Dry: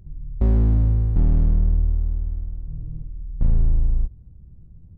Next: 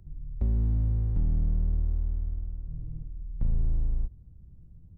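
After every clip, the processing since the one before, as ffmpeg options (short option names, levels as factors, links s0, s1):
-filter_complex "[0:a]acrossover=split=210|590[s0][s1][s2];[s0]acompressor=threshold=0.141:ratio=4[s3];[s1]acompressor=threshold=0.00891:ratio=4[s4];[s2]acompressor=threshold=0.00178:ratio=4[s5];[s3][s4][s5]amix=inputs=3:normalize=0,volume=0.531"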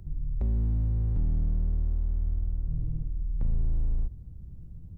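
-af "alimiter=level_in=1.78:limit=0.0631:level=0:latency=1:release=44,volume=0.562,volume=2.24"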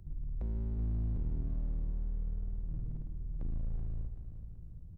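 -af "asoftclip=type=hard:threshold=0.0531,aecho=1:1:381|762|1143|1524|1905:0.316|0.139|0.0612|0.0269|0.0119,volume=0.447"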